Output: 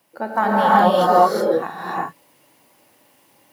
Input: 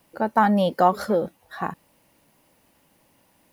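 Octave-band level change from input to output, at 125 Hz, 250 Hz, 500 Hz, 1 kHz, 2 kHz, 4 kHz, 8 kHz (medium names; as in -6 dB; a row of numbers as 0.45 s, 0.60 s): +1.0 dB, +1.0 dB, +6.0 dB, +7.0 dB, +6.5 dB, +7.0 dB, +6.5 dB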